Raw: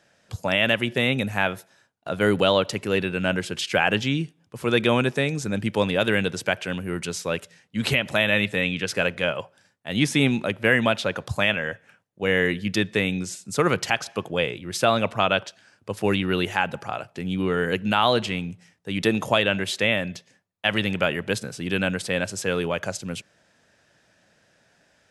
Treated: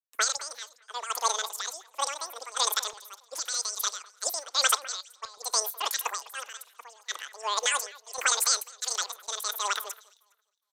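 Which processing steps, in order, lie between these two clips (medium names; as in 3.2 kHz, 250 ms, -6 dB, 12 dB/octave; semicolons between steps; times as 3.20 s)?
high-pass 220 Hz 24 dB/octave; tilt EQ +2.5 dB/octave; in parallel at -1 dB: compression, threshold -28 dBFS, peak gain reduction 14 dB; on the sum: peak limiter -8.5 dBFS, peak gain reduction 7.5 dB; random-step tremolo 3.5 Hz, depth 90%; on a send: echo whose repeats swap between lows and highs 479 ms, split 1.2 kHz, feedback 62%, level -13 dB; on the sum: speed mistake 33 rpm record played at 78 rpm; resampled via 32 kHz; three bands expanded up and down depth 100%; trim -3.5 dB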